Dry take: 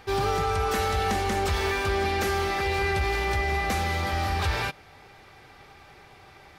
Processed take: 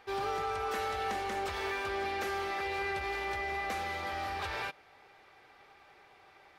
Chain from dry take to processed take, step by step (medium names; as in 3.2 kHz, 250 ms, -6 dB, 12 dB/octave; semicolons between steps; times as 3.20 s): tone controls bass -13 dB, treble -6 dB; trim -7 dB